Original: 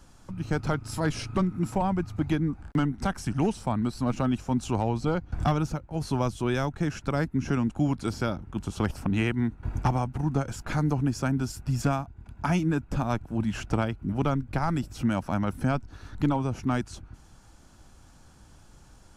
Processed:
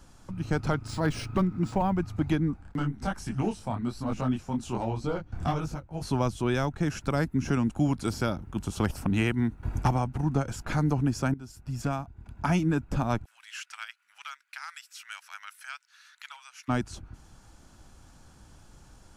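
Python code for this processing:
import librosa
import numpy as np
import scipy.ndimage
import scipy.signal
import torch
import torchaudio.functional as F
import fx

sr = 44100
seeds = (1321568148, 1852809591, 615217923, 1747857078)

y = fx.resample_linear(x, sr, factor=3, at=(0.87, 1.98))
y = fx.detune_double(y, sr, cents=fx.line((2.56, 32.0), (6.01, 50.0)), at=(2.56, 6.01), fade=0.02)
y = fx.high_shelf(y, sr, hz=8700.0, db=8.5, at=(6.86, 9.94))
y = fx.cheby2_highpass(y, sr, hz=350.0, order=4, stop_db=70, at=(13.24, 16.68), fade=0.02)
y = fx.edit(y, sr, fx.fade_in_from(start_s=11.34, length_s=0.99, floor_db=-18.0), tone=tone)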